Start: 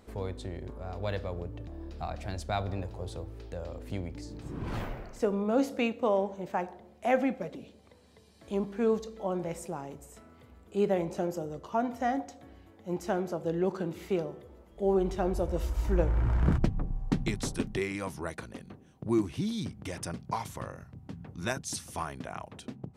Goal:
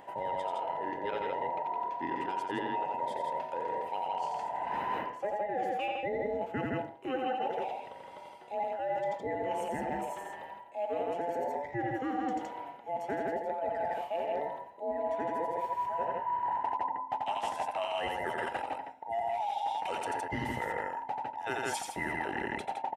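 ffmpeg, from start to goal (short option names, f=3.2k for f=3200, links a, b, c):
-af "afftfilt=real='real(if(between(b,1,1008),(2*floor((b-1)/48)+1)*48-b,b),0)':imag='imag(if(between(b,1,1008),(2*floor((b-1)/48)+1)*48-b,b),0)*if(between(b,1,1008),-1,1)':win_size=2048:overlap=0.75,highpass=100,highshelf=f=3.4k:t=q:w=1.5:g=-9,aecho=1:1:87.46|163.3:0.562|0.631,areverse,acompressor=threshold=-39dB:ratio=8,areverse,volume=8dB"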